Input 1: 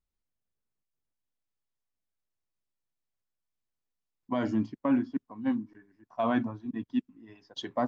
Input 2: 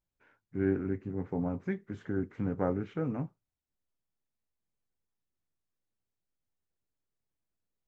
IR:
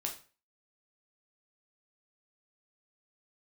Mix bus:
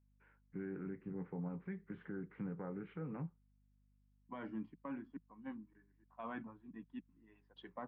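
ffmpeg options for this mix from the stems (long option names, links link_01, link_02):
-filter_complex "[0:a]volume=-12dB[link_01];[1:a]volume=-4.5dB[link_02];[link_01][link_02]amix=inputs=2:normalize=0,highpass=frequency=150:width=0.5412,highpass=frequency=150:width=1.3066,equalizer=frequency=170:width_type=q:width=4:gain=6,equalizer=frequency=250:width_type=q:width=4:gain=-8,equalizer=frequency=360:width_type=q:width=4:gain=-3,equalizer=frequency=650:width_type=q:width=4:gain=-9,lowpass=frequency=2700:width=0.5412,lowpass=frequency=2700:width=1.3066,aeval=exprs='val(0)+0.000251*(sin(2*PI*50*n/s)+sin(2*PI*2*50*n/s)/2+sin(2*PI*3*50*n/s)/3+sin(2*PI*4*50*n/s)/4+sin(2*PI*5*50*n/s)/5)':channel_layout=same,alimiter=level_in=11dB:limit=-24dB:level=0:latency=1:release=129,volume=-11dB"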